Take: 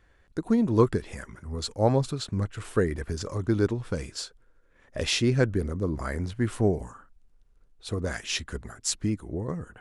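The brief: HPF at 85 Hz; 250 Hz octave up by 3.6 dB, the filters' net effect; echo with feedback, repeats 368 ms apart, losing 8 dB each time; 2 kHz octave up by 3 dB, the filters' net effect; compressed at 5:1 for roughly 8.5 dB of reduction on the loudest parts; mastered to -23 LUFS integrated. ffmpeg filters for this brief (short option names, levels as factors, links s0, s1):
-af "highpass=85,equalizer=f=250:t=o:g=4.5,equalizer=f=2000:t=o:g=4,acompressor=threshold=0.0708:ratio=5,aecho=1:1:368|736|1104|1472|1840:0.398|0.159|0.0637|0.0255|0.0102,volume=2.24"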